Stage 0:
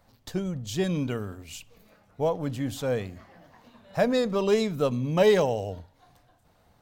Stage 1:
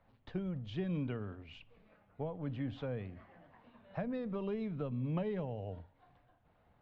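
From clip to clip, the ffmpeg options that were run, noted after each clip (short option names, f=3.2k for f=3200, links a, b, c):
-filter_complex "[0:a]lowpass=f=3k:w=0.5412,lowpass=f=3k:w=1.3066,acrossover=split=230[a][b];[b]acompressor=threshold=-32dB:ratio=16[c];[a][c]amix=inputs=2:normalize=0,volume=-7dB"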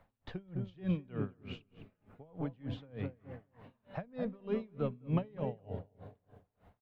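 -filter_complex "[0:a]asplit=2[a][b];[b]adelay=208,lowpass=f=1.5k:p=1,volume=-8dB,asplit=2[c][d];[d]adelay=208,lowpass=f=1.5k:p=1,volume=0.48,asplit=2[e][f];[f]adelay=208,lowpass=f=1.5k:p=1,volume=0.48,asplit=2[g][h];[h]adelay=208,lowpass=f=1.5k:p=1,volume=0.48,asplit=2[i][j];[j]adelay=208,lowpass=f=1.5k:p=1,volume=0.48,asplit=2[k][l];[l]adelay=208,lowpass=f=1.5k:p=1,volume=0.48[m];[a][c][e][g][i][k][m]amix=inputs=7:normalize=0,aeval=exprs='val(0)*pow(10,-28*(0.5-0.5*cos(2*PI*3.3*n/s))/20)':c=same,volume=6dB"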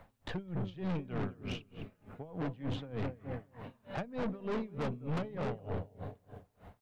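-af "aeval=exprs='(tanh(141*val(0)+0.4)-tanh(0.4))/141':c=same,volume=10.5dB"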